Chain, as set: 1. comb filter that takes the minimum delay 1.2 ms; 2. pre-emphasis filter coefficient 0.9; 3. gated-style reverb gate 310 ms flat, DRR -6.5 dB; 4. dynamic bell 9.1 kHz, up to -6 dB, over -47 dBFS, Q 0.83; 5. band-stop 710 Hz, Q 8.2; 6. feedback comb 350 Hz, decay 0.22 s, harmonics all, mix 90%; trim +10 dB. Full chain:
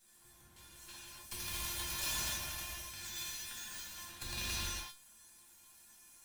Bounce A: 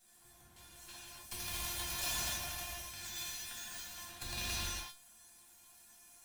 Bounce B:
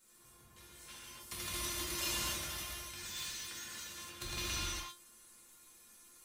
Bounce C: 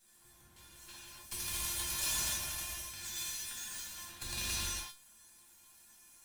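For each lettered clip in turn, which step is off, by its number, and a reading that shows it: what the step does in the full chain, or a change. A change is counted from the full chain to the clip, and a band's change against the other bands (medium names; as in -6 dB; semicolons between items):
5, 500 Hz band +2.5 dB; 1, 500 Hz band +4.0 dB; 4, momentary loudness spread change -5 LU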